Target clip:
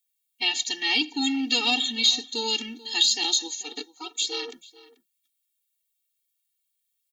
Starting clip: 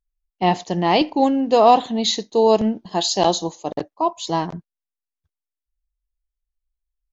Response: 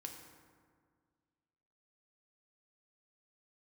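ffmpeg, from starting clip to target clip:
-filter_complex "[0:a]firequalizer=gain_entry='entry(170,0);entry(360,-21);entry(740,-20);entry(2100,7)':delay=0.05:min_phase=1,acrossover=split=910|2200[link_01][link_02][link_03];[link_01]acompressor=threshold=-26dB:ratio=4[link_04];[link_02]acompressor=threshold=-43dB:ratio=4[link_05];[link_03]acompressor=threshold=-29dB:ratio=4[link_06];[link_04][link_05][link_06]amix=inputs=3:normalize=0,acrossover=split=220|790[link_07][link_08][link_09];[link_08]asoftclip=type=tanh:threshold=-34.5dB[link_10];[link_07][link_10][link_09]amix=inputs=3:normalize=0,aexciter=amount=1.6:drive=4.7:freq=3000,asplit=3[link_11][link_12][link_13];[link_11]afade=type=out:start_time=3.61:duration=0.02[link_14];[link_12]tremolo=f=290:d=0.919,afade=type=in:start_time=3.61:duration=0.02,afade=type=out:start_time=4.52:duration=0.02[link_15];[link_13]afade=type=in:start_time=4.52:duration=0.02[link_16];[link_14][link_15][link_16]amix=inputs=3:normalize=0,asplit=2[link_17][link_18];[link_18]adelay=437.3,volume=-18dB,highshelf=frequency=4000:gain=-9.84[link_19];[link_17][link_19]amix=inputs=2:normalize=0,afftfilt=real='re*eq(mod(floor(b*sr/1024/240),2),1)':imag='im*eq(mod(floor(b*sr/1024/240),2),1)':win_size=1024:overlap=0.75,volume=7dB"

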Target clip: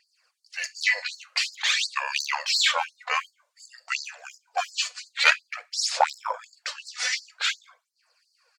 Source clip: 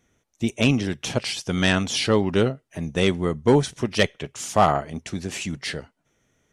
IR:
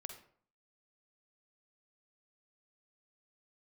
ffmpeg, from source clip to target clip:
-filter_complex "[0:a]bass=frequency=250:gain=-9,treble=frequency=4000:gain=2,aphaser=in_gain=1:out_gain=1:delay=3.1:decay=0.58:speed=0.66:type=sinusoidal,asetrate=33516,aresample=44100,asplit=2[link_01][link_02];[1:a]atrim=start_sample=2205,asetrate=83790,aresample=44100[link_03];[link_02][link_03]afir=irnorm=-1:irlink=0,volume=2.5dB[link_04];[link_01][link_04]amix=inputs=2:normalize=0,afftfilt=real='re*gte(b*sr/1024,460*pow(4200/460,0.5+0.5*sin(2*PI*2.8*pts/sr)))':imag='im*gte(b*sr/1024,460*pow(4200/460,0.5+0.5*sin(2*PI*2.8*pts/sr)))':win_size=1024:overlap=0.75"

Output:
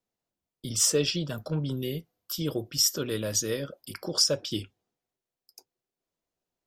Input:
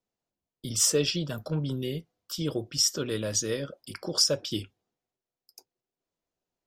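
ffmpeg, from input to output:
ffmpeg -i in.wav -filter_complex "[0:a]asettb=1/sr,asplit=3[link_01][link_02][link_03];[link_01]atrim=end=1.774[link_04];[link_02]atrim=start=1.77:end=4.08,asetpts=PTS-STARTPTS,afade=type=in:duration=0.004:curve=qsin,afade=type=out:start_time=2.306:duration=0.004:curve=qsin,equalizer=frequency=13000:width_type=o:width=0.34:gain=12.5[link_05];[link_03]atrim=start=4.076[link_06];[link_04][link_05]acrossfade=duration=0.004:curve1=hsin:curve2=qsin[link_07];[link_07][link_06]acrossfade=duration=0.004:curve1=qsin:curve2=hsin" out.wav

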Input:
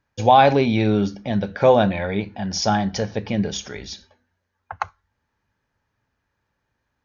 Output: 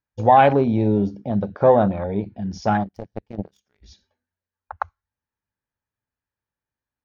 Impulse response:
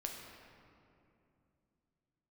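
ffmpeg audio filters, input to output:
-filter_complex "[0:a]asplit=3[link_01][link_02][link_03];[link_01]afade=type=out:start_time=2.83:duration=0.02[link_04];[link_02]aeval=exprs='0.355*(cos(1*acos(clip(val(0)/0.355,-1,1)))-cos(1*PI/2))+0.112*(cos(3*acos(clip(val(0)/0.355,-1,1)))-cos(3*PI/2))':channel_layout=same,afade=type=in:start_time=2.83:duration=0.02,afade=type=out:start_time=3.82:duration=0.02[link_05];[link_03]afade=type=in:start_time=3.82:duration=0.02[link_06];[link_04][link_05][link_06]amix=inputs=3:normalize=0,afwtdn=0.0447"

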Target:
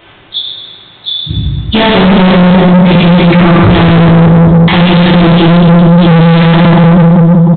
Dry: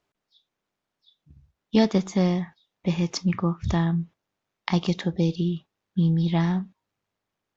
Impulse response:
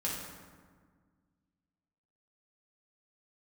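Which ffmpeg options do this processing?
-filter_complex "[0:a]highshelf=frequency=2200:gain=11.5[link_01];[1:a]atrim=start_sample=2205,asetrate=27342,aresample=44100[link_02];[link_01][link_02]afir=irnorm=-1:irlink=0,aresample=8000,asoftclip=type=tanh:threshold=-27.5dB,aresample=44100,alimiter=level_in=35dB:limit=-1dB:release=50:level=0:latency=1,volume=-1dB"

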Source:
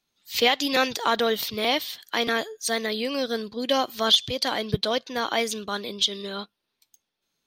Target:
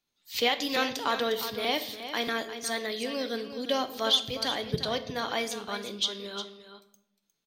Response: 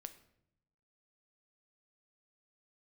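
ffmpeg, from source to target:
-filter_complex "[0:a]aecho=1:1:356:0.282[link_01];[1:a]atrim=start_sample=2205[link_02];[link_01][link_02]afir=irnorm=-1:irlink=0"

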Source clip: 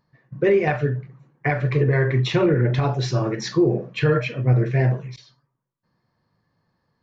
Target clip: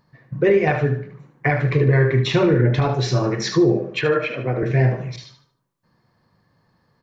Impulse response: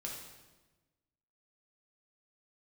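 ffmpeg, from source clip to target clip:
-filter_complex "[0:a]asettb=1/sr,asplit=3[link_01][link_02][link_03];[link_01]atrim=end=4.014[link_04];[link_02]atrim=start=4.01:end=4.63,asetpts=PTS-STARTPTS,afade=type=in:duration=0.004:curve=qsin,afade=type=out:start_time=0.616:duration=0.004:curve=qsin,acrossover=split=270 3500:gain=0.224 1 0.224[link_05][link_06][link_07];[link_05][link_06][link_07]amix=inputs=3:normalize=0[link_08];[link_03]atrim=start=4.626[link_09];[link_04][link_08]acrossfade=duration=0.004:curve1=hsin:curve2=qsin[link_10];[link_10][link_09]acrossfade=duration=0.004:curve1=qsin:curve2=hsin,aecho=1:1:75|150|225|300:0.335|0.107|0.0343|0.011,asplit=2[link_11][link_12];[link_12]acompressor=threshold=-31dB:ratio=6,volume=2dB[link_13];[link_11][link_13]amix=inputs=2:normalize=0"

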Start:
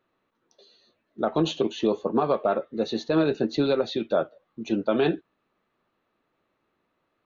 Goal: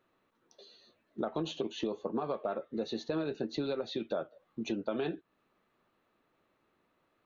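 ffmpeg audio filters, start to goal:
ffmpeg -i in.wav -af "acompressor=threshold=-33dB:ratio=4" out.wav

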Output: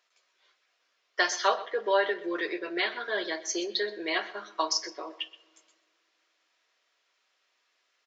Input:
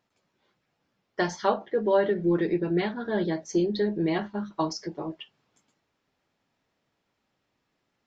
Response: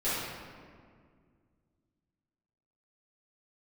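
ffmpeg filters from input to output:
-filter_complex "[0:a]highpass=frequency=360:width=0.5412,highpass=frequency=360:width=1.3066,tiltshelf=frequency=780:gain=-9,aecho=1:1:125:0.133,asplit=2[link_01][link_02];[1:a]atrim=start_sample=2205[link_03];[link_02][link_03]afir=irnorm=-1:irlink=0,volume=-30dB[link_04];[link_01][link_04]amix=inputs=2:normalize=0,aresample=16000,aresample=44100,asuperstop=centerf=850:order=4:qfactor=7.8"

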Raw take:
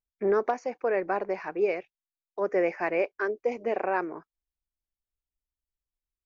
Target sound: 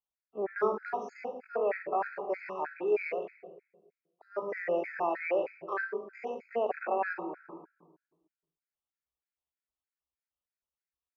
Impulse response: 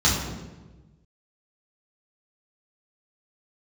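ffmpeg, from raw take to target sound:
-filter_complex "[0:a]highpass=frequency=91:poles=1,acrossover=split=460 2800:gain=0.251 1 0.224[link_01][link_02][link_03];[link_01][link_02][link_03]amix=inputs=3:normalize=0,bandreject=frequency=50:width_type=h:width=6,bandreject=frequency=100:width_type=h:width=6,bandreject=frequency=150:width_type=h:width=6,bandreject=frequency=200:width_type=h:width=6,bandreject=frequency=250:width_type=h:width=6,bandreject=frequency=300:width_type=h:width=6,bandreject=frequency=350:width_type=h:width=6,bandreject=frequency=400:width_type=h:width=6,bandreject=frequency=450:width_type=h:width=6,bandreject=frequency=500:width_type=h:width=6,acrossover=split=360|3000[link_04][link_05][link_06];[link_05]acompressor=threshold=-29dB:ratio=10[link_07];[link_04][link_07][link_06]amix=inputs=3:normalize=0,atempo=0.56,asplit=2[link_08][link_09];[1:a]atrim=start_sample=2205,adelay=42[link_10];[link_09][link_10]afir=irnorm=-1:irlink=0,volume=-24.5dB[link_11];[link_08][link_11]amix=inputs=2:normalize=0,afftfilt=real='re*gt(sin(2*PI*3.2*pts/sr)*(1-2*mod(floor(b*sr/1024/1300),2)),0)':imag='im*gt(sin(2*PI*3.2*pts/sr)*(1-2*mod(floor(b*sr/1024/1300),2)),0)':win_size=1024:overlap=0.75,volume=3dB"

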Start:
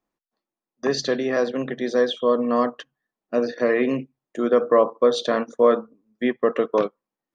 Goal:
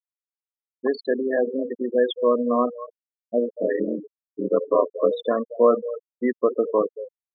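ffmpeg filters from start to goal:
ffmpeg -i in.wav -filter_complex "[0:a]asettb=1/sr,asplit=3[link_01][link_02][link_03];[link_01]atrim=end=3.484[link_04];[link_02]atrim=start=3.48:end=5.11,asetpts=PTS-STARTPTS,afade=type=in:duration=0.004:curve=qsin,afade=type=out:start_time=1.626:duration=0.004:curve=qsin,aeval=exprs='val(0)*sin(2*PI*43*n/s)':channel_layout=same[link_05];[link_03]atrim=start=5.106[link_06];[link_04][link_05]acrossfade=duration=0.004:curve1=hsin:curve2=qsin[link_07];[link_07][link_06]acrossfade=duration=0.004:curve1=qsin:curve2=hsin,highpass=170,lowpass=4200,asplit=2[link_08][link_09];[link_09]adelay=230,highpass=300,lowpass=3400,asoftclip=type=hard:threshold=-14dB,volume=-10dB[link_10];[link_08][link_10]amix=inputs=2:normalize=0,afftfilt=real='re*gte(hypot(re,im),0.158)':imag='im*gte(hypot(re,im),0.158)':win_size=1024:overlap=0.75" out.wav

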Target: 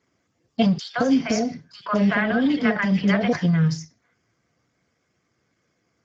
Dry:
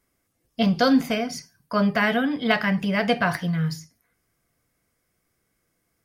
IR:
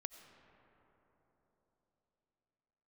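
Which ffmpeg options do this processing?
-filter_complex "[0:a]acompressor=threshold=-21dB:ratio=8,asettb=1/sr,asplit=3[link_01][link_02][link_03];[link_01]atrim=end=0.784[link_04];[link_02]atrim=start=0.78:end=3.33,asetpts=PTS-STARTPTS,afade=type=in:duration=0.004:curve=qsin,afade=type=out:start_time=2.546:duration=0.004:curve=qsin,acrossover=split=740|3000[link_05][link_06][link_07];[link_06]adelay=150[link_08];[link_05]adelay=200[link_09];[link_09][link_08][link_07]amix=inputs=3:normalize=0,atrim=end_sample=112455[link_10];[link_03]atrim=start=3.326[link_11];[link_04][link_10]acrossfade=duration=0.004:curve1=hsin:curve2=qsin[link_12];[link_12][link_11]acrossfade=duration=0.004:curve1=qsin:curve2=hsin,volume=5.5dB" -ar 16000 -c:a libspeex -b:a 13k

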